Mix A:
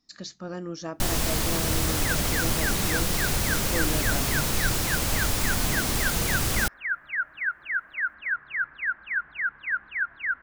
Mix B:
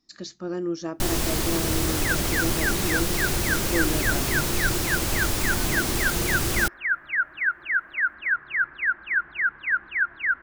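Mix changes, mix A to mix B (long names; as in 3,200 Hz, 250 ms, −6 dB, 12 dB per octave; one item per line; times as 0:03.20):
second sound +4.0 dB
master: add parametric band 350 Hz +10 dB 0.27 octaves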